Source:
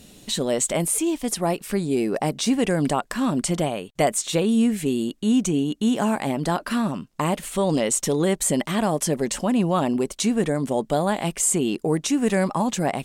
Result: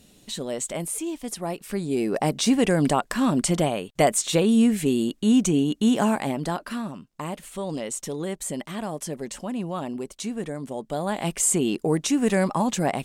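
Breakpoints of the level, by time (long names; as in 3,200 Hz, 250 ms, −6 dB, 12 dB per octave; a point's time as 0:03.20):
0:01.48 −7 dB
0:02.31 +1 dB
0:06.02 +1 dB
0:06.94 −9 dB
0:10.82 −9 dB
0:11.32 −0.5 dB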